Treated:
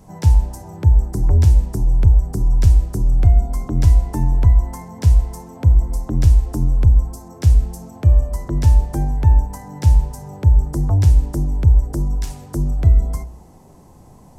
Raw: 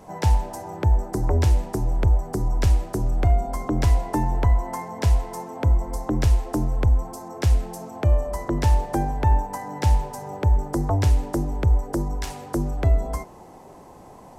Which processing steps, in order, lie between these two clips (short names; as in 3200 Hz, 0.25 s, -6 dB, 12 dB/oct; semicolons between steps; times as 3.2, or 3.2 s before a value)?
tone controls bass +14 dB, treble +8 dB; de-hum 59.89 Hz, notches 14; gain -6 dB